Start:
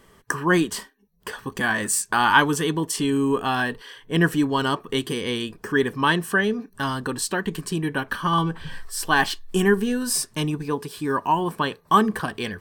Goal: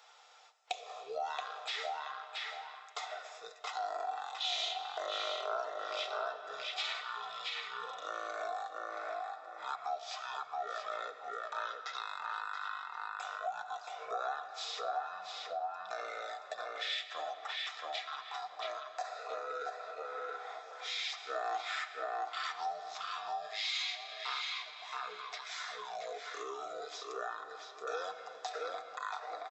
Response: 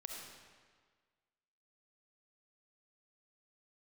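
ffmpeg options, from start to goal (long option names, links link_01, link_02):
-filter_complex "[0:a]asetrate=18846,aresample=44100,highpass=frequency=750:width=0.5412,highpass=frequency=750:width=1.3066,aecho=1:1:6.7:0.44,asplit=2[link_01][link_02];[link_02]adelay=675,lowpass=frequency=3100:poles=1,volume=-3dB,asplit=2[link_03][link_04];[link_04]adelay=675,lowpass=frequency=3100:poles=1,volume=0.16,asplit=2[link_05][link_06];[link_06]adelay=675,lowpass=frequency=3100:poles=1,volume=0.16[link_07];[link_01][link_03][link_05][link_07]amix=inputs=4:normalize=0,asplit=2[link_08][link_09];[1:a]atrim=start_sample=2205[link_10];[link_09][link_10]afir=irnorm=-1:irlink=0,volume=-5.5dB[link_11];[link_08][link_11]amix=inputs=2:normalize=0,acompressor=threshold=-39dB:ratio=2.5,volume=-2dB"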